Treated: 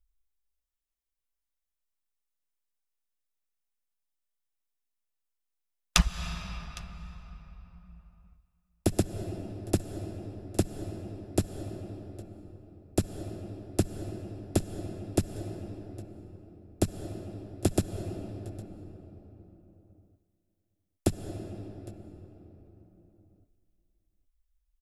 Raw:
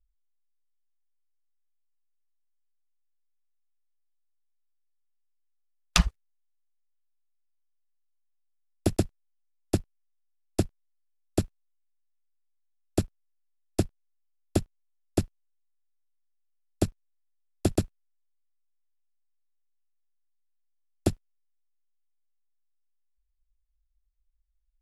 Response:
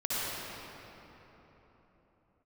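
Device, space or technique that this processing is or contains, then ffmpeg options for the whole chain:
ducked reverb: -filter_complex "[0:a]asplit=3[s0][s1][s2];[1:a]atrim=start_sample=2205[s3];[s1][s3]afir=irnorm=-1:irlink=0[s4];[s2]apad=whole_len=1094173[s5];[s4][s5]sidechaincompress=threshold=0.0282:ratio=5:attack=12:release=183,volume=0.2[s6];[s0][s6]amix=inputs=2:normalize=0,highshelf=f=6900:g=4,bandreject=f=4500:w=15,aecho=1:1:810:0.0841,volume=0.841"

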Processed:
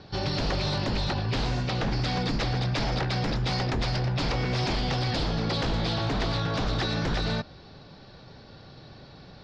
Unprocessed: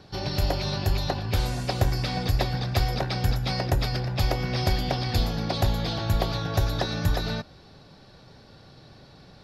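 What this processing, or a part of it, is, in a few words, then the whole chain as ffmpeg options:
synthesiser wavefolder: -filter_complex "[0:a]aeval=exprs='0.0631*(abs(mod(val(0)/0.0631+3,4)-2)-1)':c=same,lowpass=f=5400:w=0.5412,lowpass=f=5400:w=1.3066,asettb=1/sr,asplit=3[s0][s1][s2];[s0]atrim=end=1.614[s3];[s1]atrim=start=1.61:end=2.02,asetpts=PTS-STARTPTS,afade=t=in:d=0.004:c=qsin,afade=t=out:st=0.406:d=0.004:c=qsin,lowpass=6000[s4];[s2]atrim=start=2.016[s5];[s3][s4]acrossfade=d=0.004:c1=hsin:c2=qsin[s6];[s6][s5]acrossfade=d=0.004:c1=qsin:c2=hsin,volume=1.33"

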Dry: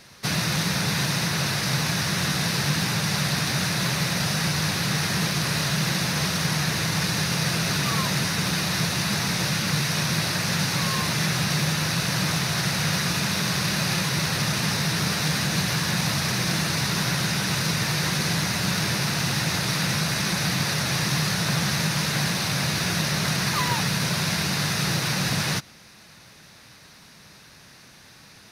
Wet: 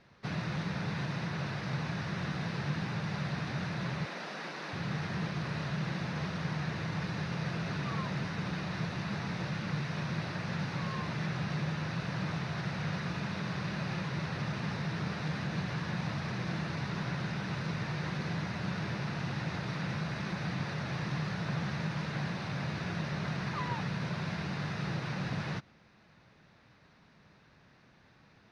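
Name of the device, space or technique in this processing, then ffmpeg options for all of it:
phone in a pocket: -filter_complex "[0:a]asettb=1/sr,asplit=3[s0][s1][s2];[s0]atrim=end=4.054[s3];[s1]atrim=start=4.05:end=4.73,asetpts=PTS-STARTPTS,afade=t=in:d=0.004:c=qsin,afade=t=out:st=0.676:d=0.004:c=qsin,highpass=f=260:w=0.5412,highpass=f=260:w=1.3066[s4];[s2]atrim=start=4.726[s5];[s3][s4]acrossfade=d=0.004:c1=hsin:c2=qsin[s6];[s6][s5]acrossfade=d=0.004:c1=qsin:c2=hsin,lowpass=3900,highshelf=f=2300:g=-10.5,volume=0.376"

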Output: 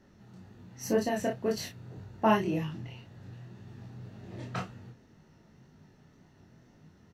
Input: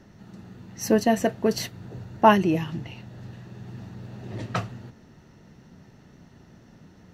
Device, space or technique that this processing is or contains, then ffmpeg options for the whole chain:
double-tracked vocal: -filter_complex "[0:a]asplit=2[s0][s1];[s1]adelay=32,volume=0.562[s2];[s0][s2]amix=inputs=2:normalize=0,flanger=delay=19:depth=5.7:speed=1.9,volume=0.531"

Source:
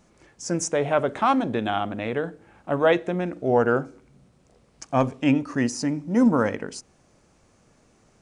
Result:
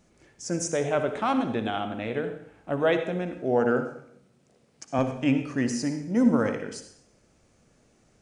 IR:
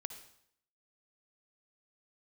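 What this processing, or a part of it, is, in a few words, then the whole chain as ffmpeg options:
bathroom: -filter_complex "[1:a]atrim=start_sample=2205[s0];[0:a][s0]afir=irnorm=-1:irlink=0,asettb=1/sr,asplit=3[s1][s2][s3];[s1]atrim=end=3.384[s4];[s2]atrim=start=3.38:end=4.99,asetpts=PTS-STARTPTS,afade=t=in:d=0.004:c=qsin,afade=t=out:st=1.606:d=0.004:c=qsin,highpass=130[s5];[s3]atrim=start=4.986[s6];[s4][s5]acrossfade=d=0.004:c1=hsin:c2=qsin[s7];[s7][s6]acrossfade=d=0.004:c1=qsin:c2=hsin,equalizer=f=1000:t=o:w=0.74:g=-5"

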